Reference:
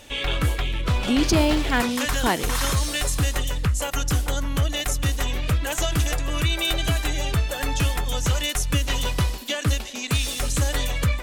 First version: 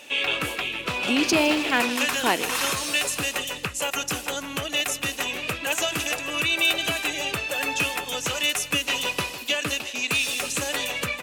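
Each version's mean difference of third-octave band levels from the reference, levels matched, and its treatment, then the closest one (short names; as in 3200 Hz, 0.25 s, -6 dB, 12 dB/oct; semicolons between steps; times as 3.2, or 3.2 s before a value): 3.0 dB: HPF 270 Hz 12 dB/oct; bell 2600 Hz +10.5 dB 0.24 oct; on a send: feedback echo 0.159 s, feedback 50%, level -16 dB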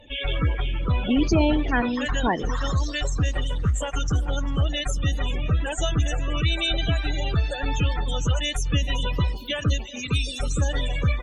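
9.5 dB: loudest bins only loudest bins 32; on a send: feedback echo 0.397 s, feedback 30%, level -21 dB; on the sum: Opus 20 kbps 48000 Hz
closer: first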